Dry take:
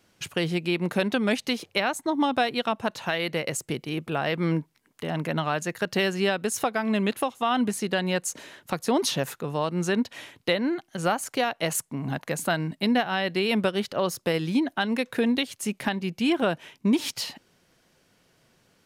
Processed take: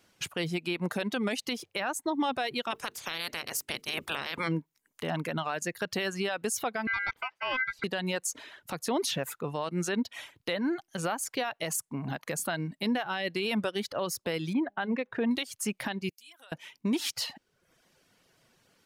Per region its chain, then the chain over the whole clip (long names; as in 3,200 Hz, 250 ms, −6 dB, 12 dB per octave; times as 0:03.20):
0:02.70–0:04.47: ceiling on every frequency bin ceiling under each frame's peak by 23 dB + mains-hum notches 50/100/150/200/250/300/350/400/450 Hz
0:06.87–0:07.84: ring modulation 1,800 Hz + high-frequency loss of the air 300 metres
0:14.53–0:15.31: low-pass filter 1,900 Hz + hum removal 203.3 Hz, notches 4
0:16.09–0:16.52: first difference + downward compressor 2 to 1, threshold −57 dBFS
whole clip: reverb reduction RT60 0.67 s; low-shelf EQ 450 Hz −4 dB; brickwall limiter −21 dBFS